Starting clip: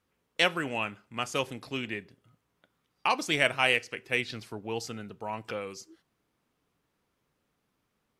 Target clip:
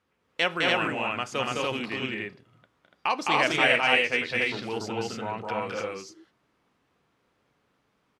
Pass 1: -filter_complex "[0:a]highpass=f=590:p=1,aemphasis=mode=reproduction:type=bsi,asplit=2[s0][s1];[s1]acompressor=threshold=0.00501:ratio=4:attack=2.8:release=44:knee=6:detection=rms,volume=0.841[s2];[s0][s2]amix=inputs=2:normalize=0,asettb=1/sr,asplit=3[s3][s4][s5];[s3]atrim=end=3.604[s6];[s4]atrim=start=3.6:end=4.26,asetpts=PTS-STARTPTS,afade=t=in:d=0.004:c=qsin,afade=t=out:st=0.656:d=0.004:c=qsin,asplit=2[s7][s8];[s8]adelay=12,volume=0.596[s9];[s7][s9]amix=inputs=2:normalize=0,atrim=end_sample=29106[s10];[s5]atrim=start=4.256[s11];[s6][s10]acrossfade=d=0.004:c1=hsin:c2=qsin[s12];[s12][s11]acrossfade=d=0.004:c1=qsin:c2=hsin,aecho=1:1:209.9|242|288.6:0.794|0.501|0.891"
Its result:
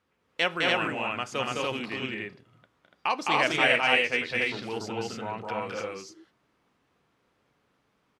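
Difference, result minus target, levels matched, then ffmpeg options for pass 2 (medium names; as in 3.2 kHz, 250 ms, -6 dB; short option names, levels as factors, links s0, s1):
compression: peak gain reduction +7.5 dB
-filter_complex "[0:a]highpass=f=590:p=1,aemphasis=mode=reproduction:type=bsi,asplit=2[s0][s1];[s1]acompressor=threshold=0.0158:ratio=4:attack=2.8:release=44:knee=6:detection=rms,volume=0.841[s2];[s0][s2]amix=inputs=2:normalize=0,asettb=1/sr,asplit=3[s3][s4][s5];[s3]atrim=end=3.604[s6];[s4]atrim=start=3.6:end=4.26,asetpts=PTS-STARTPTS,afade=t=in:d=0.004:c=qsin,afade=t=out:st=0.656:d=0.004:c=qsin,asplit=2[s7][s8];[s8]adelay=12,volume=0.596[s9];[s7][s9]amix=inputs=2:normalize=0,atrim=end_sample=29106[s10];[s5]atrim=start=4.256[s11];[s6][s10]acrossfade=d=0.004:c1=hsin:c2=qsin[s12];[s12][s11]acrossfade=d=0.004:c1=qsin:c2=hsin,aecho=1:1:209.9|242|288.6:0.794|0.501|0.891"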